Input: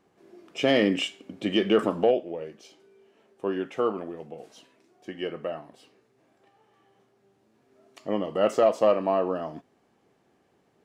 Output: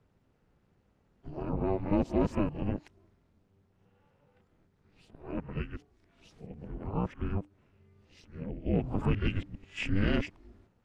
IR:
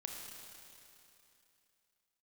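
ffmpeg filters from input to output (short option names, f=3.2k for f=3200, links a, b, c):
-filter_complex "[0:a]areverse,lowpass=f=4k:p=1,asplit=2[a][b];[b]alimiter=limit=-19.5dB:level=0:latency=1:release=210,volume=-0.5dB[c];[a][c]amix=inputs=2:normalize=0,lowshelf=f=150:g=10,tremolo=f=300:d=0.889,afreqshift=-300,volume=-6.5dB"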